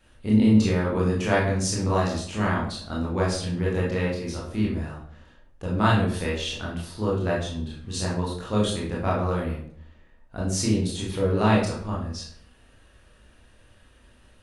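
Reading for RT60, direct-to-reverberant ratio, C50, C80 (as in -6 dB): 0.55 s, -5.5 dB, 4.0 dB, 8.0 dB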